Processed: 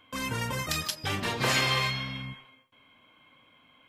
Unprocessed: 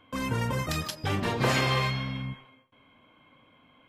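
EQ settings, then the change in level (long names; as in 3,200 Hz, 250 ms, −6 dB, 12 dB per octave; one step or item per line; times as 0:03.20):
tilt shelving filter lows −5 dB, about 1,400 Hz
0.0 dB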